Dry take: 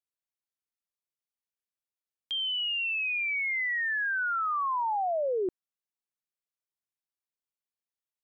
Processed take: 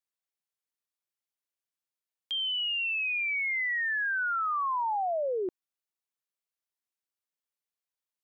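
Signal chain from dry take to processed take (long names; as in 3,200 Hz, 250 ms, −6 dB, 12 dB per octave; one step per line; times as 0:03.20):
low-shelf EQ 200 Hz −10 dB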